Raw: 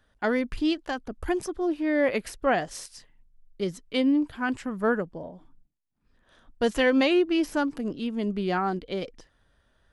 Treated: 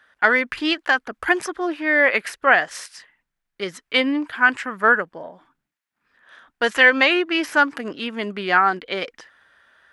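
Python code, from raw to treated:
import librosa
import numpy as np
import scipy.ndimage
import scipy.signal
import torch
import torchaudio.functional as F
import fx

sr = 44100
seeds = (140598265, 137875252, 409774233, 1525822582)

p1 = fx.highpass(x, sr, hz=470.0, slope=6)
p2 = fx.peak_eq(p1, sr, hz=1700.0, db=13.5, octaves=1.7)
p3 = fx.rider(p2, sr, range_db=3, speed_s=0.5)
p4 = p2 + (p3 * librosa.db_to_amplitude(2.0))
y = p4 * librosa.db_to_amplitude(-3.5)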